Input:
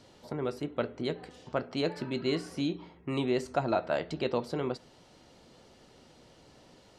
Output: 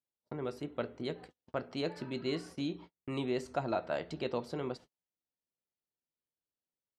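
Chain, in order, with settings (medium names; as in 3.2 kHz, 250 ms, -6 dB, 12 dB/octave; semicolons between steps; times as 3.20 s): gate -44 dBFS, range -41 dB; trim -5 dB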